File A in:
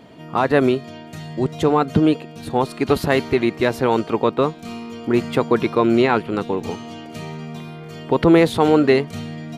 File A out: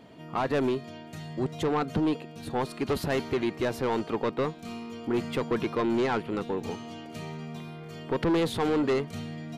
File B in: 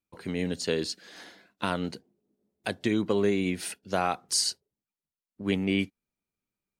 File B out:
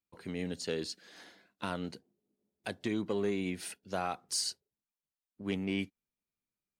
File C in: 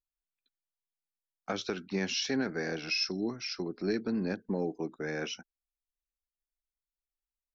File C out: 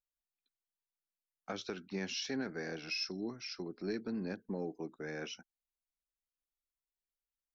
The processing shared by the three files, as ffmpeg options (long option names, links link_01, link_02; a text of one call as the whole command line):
ffmpeg -i in.wav -af "asoftclip=type=tanh:threshold=-14.5dB,volume=-6.5dB" out.wav